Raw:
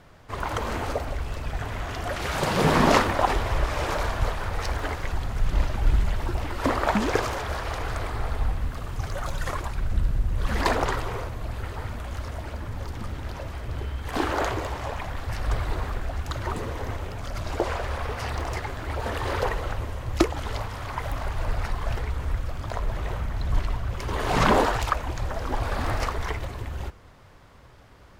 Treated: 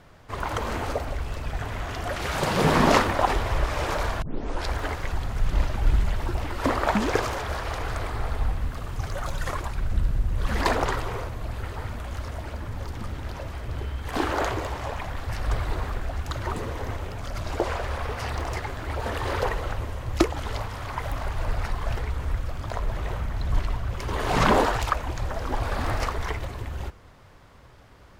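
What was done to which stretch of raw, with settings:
0:04.22: tape start 0.49 s

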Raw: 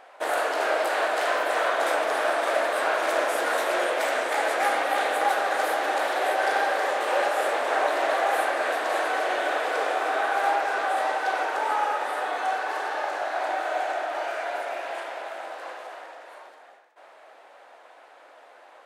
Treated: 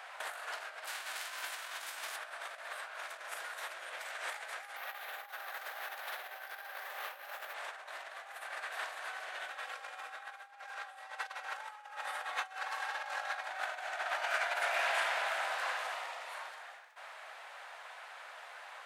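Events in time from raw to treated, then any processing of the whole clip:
0:00.86–0:02.15: spectral envelope flattened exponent 0.6
0:04.76–0:07.54: bad sample-rate conversion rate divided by 3×, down filtered, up hold
0:09.50–0:13.48: comb filter 3.7 ms
0:15.92–0:16.35: parametric band 1,600 Hz −10 dB 0.21 octaves
whole clip: compressor whose output falls as the input rises −32 dBFS, ratio −0.5; high-pass filter 1,200 Hz 12 dB per octave; level −2 dB

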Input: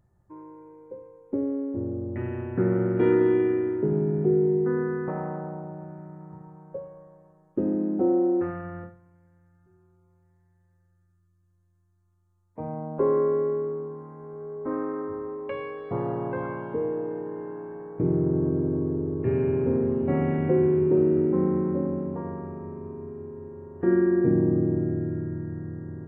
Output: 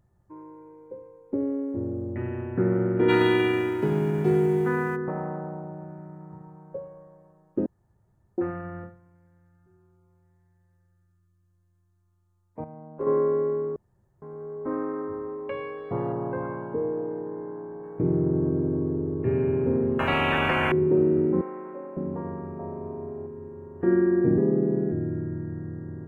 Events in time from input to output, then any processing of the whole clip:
0:01.40–0:02.13: high-shelf EQ 2,300 Hz +8 dB
0:03.08–0:04.95: spectral envelope flattened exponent 0.6
0:07.66–0:08.38: fill with room tone
0:12.64–0:13.07: noise gate −21 dBFS, range −10 dB
0:13.76–0:14.22: fill with room tone
0:16.12–0:17.82: low-pass filter 1,800 Hz → 1,300 Hz
0:19.99–0:20.72: every bin compressed towards the loudest bin 10 to 1
0:21.41–0:21.97: high-pass filter 700 Hz
0:22.59–0:23.27: parametric band 680 Hz +13 dB 0.72 octaves
0:24.38–0:24.92: frequency shifter +41 Hz

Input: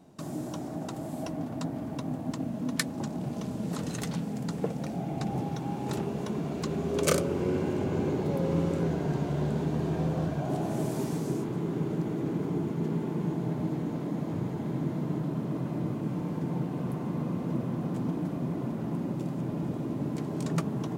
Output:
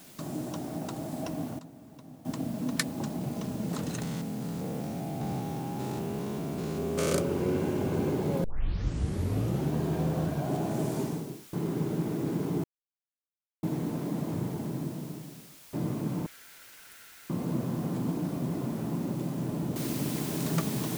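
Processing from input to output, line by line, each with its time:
0:01.29–0:02.55: duck −15 dB, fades 0.30 s logarithmic
0:04.02–0:07.13: spectrum averaged block by block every 200 ms
0:08.44: tape start 1.29 s
0:10.97–0:11.53: fade out and dull
0:12.64–0:13.63: silence
0:14.26–0:15.73: fade out and dull
0:16.26–0:17.30: linear-phase brick-wall high-pass 1,300 Hz
0:19.76: noise floor change −53 dB −40 dB

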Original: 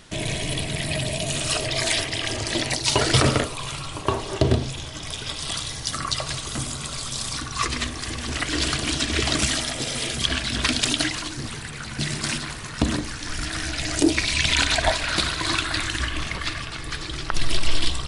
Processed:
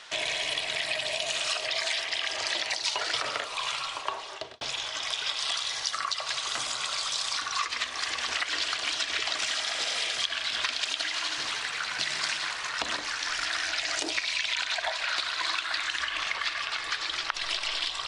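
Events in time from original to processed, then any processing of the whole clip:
0:03.70–0:04.61: fade out
0:09.25–0:12.49: feedback echo at a low word length 81 ms, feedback 80%, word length 8 bits, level −11.5 dB
whole clip: three-way crossover with the lows and the highs turned down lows −23 dB, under 580 Hz, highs −22 dB, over 6,800 Hz; downward compressor 10 to 1, threshold −31 dBFS; low-shelf EQ 280 Hz −7 dB; level +5 dB

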